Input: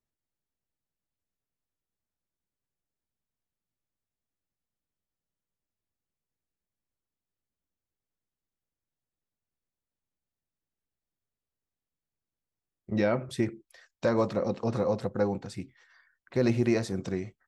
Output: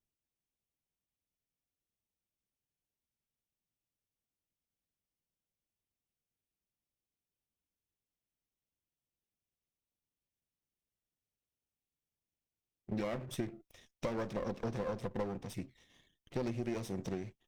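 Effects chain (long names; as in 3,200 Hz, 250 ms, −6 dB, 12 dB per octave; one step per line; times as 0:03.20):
lower of the sound and its delayed copy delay 0.33 ms
downward compressor, threshold −31 dBFS, peak gain reduction 10.5 dB
level −2.5 dB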